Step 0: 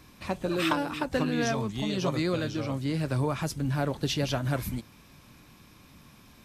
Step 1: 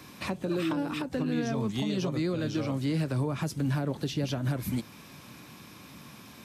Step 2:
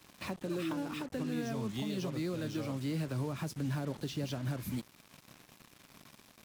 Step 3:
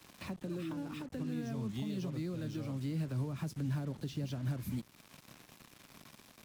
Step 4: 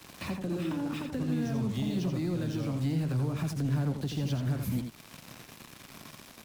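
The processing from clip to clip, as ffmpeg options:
-filter_complex "[0:a]highpass=120,acrossover=split=420[a][b];[b]acompressor=threshold=-38dB:ratio=6[c];[a][c]amix=inputs=2:normalize=0,alimiter=level_in=3.5dB:limit=-24dB:level=0:latency=1:release=252,volume=-3.5dB,volume=6.5dB"
-af "acrusher=bits=6:mix=0:aa=0.5,volume=-6.5dB"
-filter_complex "[0:a]acrossover=split=250[a][b];[b]acompressor=threshold=-52dB:ratio=2[c];[a][c]amix=inputs=2:normalize=0,volume=1dB"
-af "asoftclip=type=tanh:threshold=-30.5dB,aecho=1:1:84:0.473,volume=7.5dB"

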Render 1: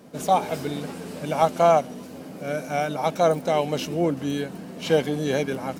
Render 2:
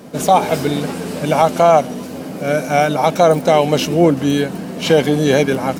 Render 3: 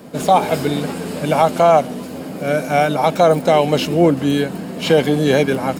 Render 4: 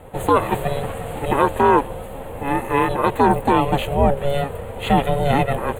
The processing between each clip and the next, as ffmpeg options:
-af "alimiter=level_in=12dB:limit=-1dB:release=50:level=0:latency=1,volume=-1dB"
-filter_complex "[0:a]bandreject=f=5.9k:w=9.2,acrossover=split=730|6000[a][b][c];[c]asoftclip=type=hard:threshold=-32dB[d];[a][b][d]amix=inputs=3:normalize=0,volume=-1dB"
-af "asuperstop=centerf=5300:order=4:qfactor=1.1,aeval=exprs='val(0)*sin(2*PI*280*n/s)':c=same"

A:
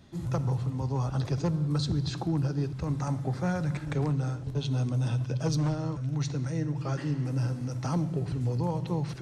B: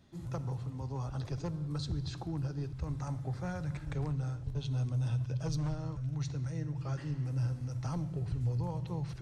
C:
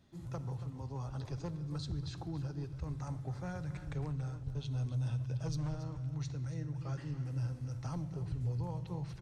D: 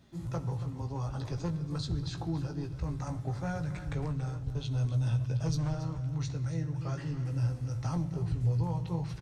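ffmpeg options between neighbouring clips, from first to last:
-af "asubboost=boost=6.5:cutoff=86,volume=-8dB"
-af "aecho=1:1:280:0.211,volume=-3.5dB"
-filter_complex "[0:a]asplit=2[a][b];[b]adelay=18,volume=-7dB[c];[a][c]amix=inputs=2:normalize=0,volume=5.5dB"

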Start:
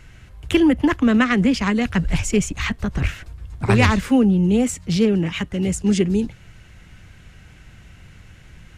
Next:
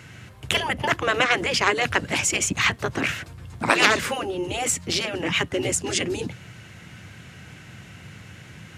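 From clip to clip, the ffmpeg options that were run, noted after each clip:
-af "afftfilt=real='re*lt(hypot(re,im),0.447)':imag='im*lt(hypot(re,im),0.447)':win_size=1024:overlap=0.75,highpass=f=98:w=0.5412,highpass=f=98:w=1.3066,volume=5.5dB"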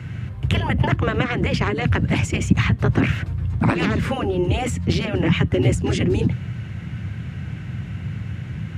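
-filter_complex "[0:a]acrossover=split=330[a][b];[b]acompressor=threshold=-24dB:ratio=10[c];[a][c]amix=inputs=2:normalize=0,bass=f=250:g=14,treble=f=4k:g=-11,volume=3dB"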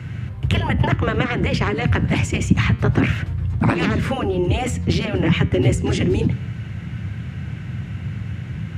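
-af "flanger=delay=8.1:depth=6.5:regen=-89:speed=0.26:shape=triangular,volume=5.5dB"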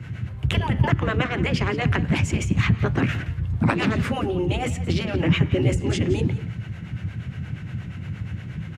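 -filter_complex "[0:a]acrossover=split=400[a][b];[a]aeval=exprs='val(0)*(1-0.7/2+0.7/2*cos(2*PI*8.5*n/s))':c=same[c];[b]aeval=exprs='val(0)*(1-0.7/2-0.7/2*cos(2*PI*8.5*n/s))':c=same[d];[c][d]amix=inputs=2:normalize=0,aecho=1:1:173:0.168"

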